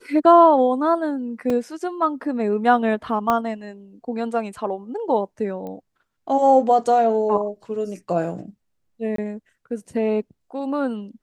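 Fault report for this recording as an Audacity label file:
1.500000	1.500000	gap 2.8 ms
3.300000	3.300000	pop -8 dBFS
5.670000	5.670000	pop -23 dBFS
9.160000	9.180000	gap 23 ms

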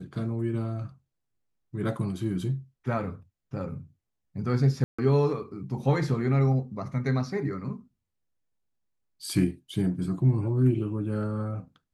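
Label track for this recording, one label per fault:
4.840000	4.990000	gap 0.145 s

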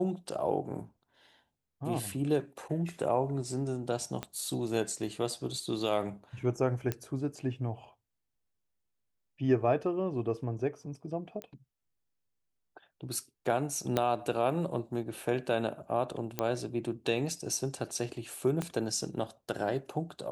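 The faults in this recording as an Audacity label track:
4.230000	4.230000	pop -21 dBFS
6.920000	6.920000	pop -17 dBFS
11.420000	11.420000	pop -25 dBFS
13.970000	13.970000	pop -13 dBFS
16.390000	16.390000	pop -15 dBFS
18.620000	18.620000	pop -19 dBFS

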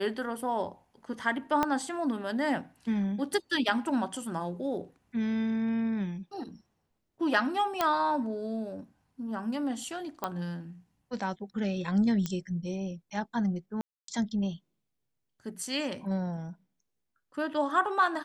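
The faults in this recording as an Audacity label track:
1.630000	1.630000	pop -13 dBFS
7.810000	7.810000	pop -11 dBFS
10.240000	10.240000	pop -17 dBFS
12.260000	12.260000	pop -18 dBFS
13.810000	14.080000	gap 0.273 s

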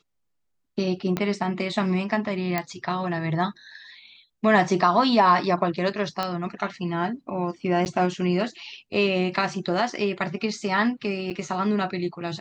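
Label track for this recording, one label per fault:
1.170000	1.170000	pop -12 dBFS
2.580000	2.580000	pop -10 dBFS
6.230000	6.230000	pop -12 dBFS
7.850000	7.860000	gap 9.7 ms
11.300000	11.310000	gap 7.3 ms

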